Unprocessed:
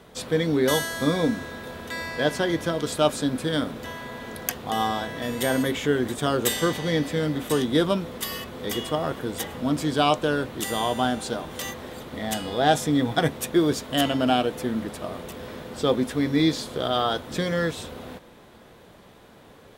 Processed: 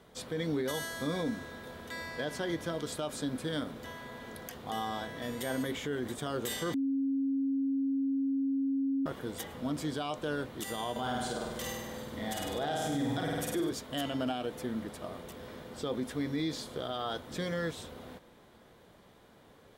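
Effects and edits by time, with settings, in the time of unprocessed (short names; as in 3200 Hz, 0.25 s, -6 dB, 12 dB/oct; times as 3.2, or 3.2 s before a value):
6.74–9.06 bleep 272 Hz -19 dBFS
10.91–13.71 flutter echo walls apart 8.5 m, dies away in 1 s
whole clip: notch 2600 Hz, Q 20; limiter -16 dBFS; gain -8.5 dB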